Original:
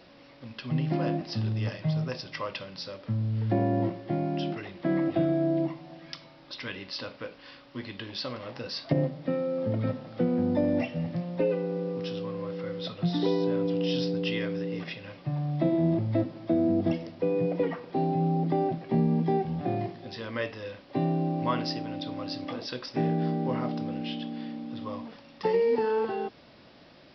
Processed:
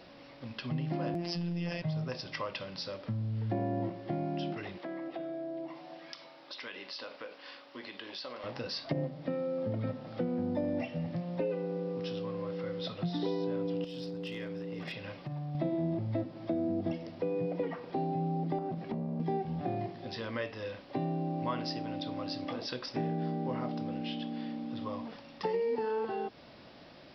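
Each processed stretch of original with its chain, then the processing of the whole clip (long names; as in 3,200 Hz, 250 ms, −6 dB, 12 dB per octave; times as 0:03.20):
0:01.14–0:01.82: phases set to zero 172 Hz + double-tracking delay 12 ms −7 dB + envelope flattener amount 70%
0:04.78–0:08.44: high-pass filter 360 Hz + downward compressor 2.5 to 1, threshold −41 dBFS
0:13.84–0:15.55: downward compressor 12 to 1, threshold −34 dBFS + hard clipping −32 dBFS + one half of a high-frequency compander encoder only
0:18.58–0:19.20: parametric band 200 Hz +8 dB 0.62 octaves + downward compressor 5 to 1, threshold −27 dBFS + saturating transformer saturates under 310 Hz
whole clip: downward compressor 2 to 1, threshold −36 dBFS; parametric band 740 Hz +2 dB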